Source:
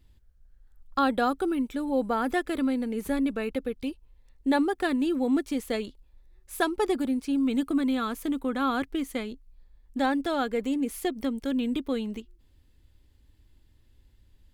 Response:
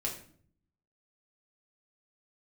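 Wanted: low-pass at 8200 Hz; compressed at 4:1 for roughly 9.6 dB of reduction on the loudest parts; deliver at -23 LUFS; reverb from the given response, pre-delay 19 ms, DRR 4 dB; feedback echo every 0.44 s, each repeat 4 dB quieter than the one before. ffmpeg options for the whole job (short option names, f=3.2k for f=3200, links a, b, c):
-filter_complex "[0:a]lowpass=8.2k,acompressor=threshold=-32dB:ratio=4,aecho=1:1:440|880|1320|1760|2200|2640|3080|3520|3960:0.631|0.398|0.25|0.158|0.0994|0.0626|0.0394|0.0249|0.0157,asplit=2[a][b];[1:a]atrim=start_sample=2205,adelay=19[c];[b][c]afir=irnorm=-1:irlink=0,volume=-6.5dB[d];[a][d]amix=inputs=2:normalize=0,volume=8.5dB"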